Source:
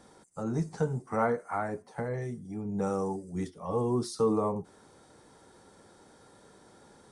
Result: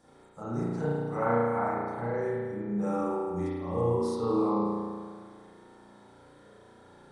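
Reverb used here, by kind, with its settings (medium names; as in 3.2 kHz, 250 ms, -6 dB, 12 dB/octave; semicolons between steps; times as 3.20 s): spring tank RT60 1.8 s, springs 34 ms, chirp 20 ms, DRR -10 dB; trim -8 dB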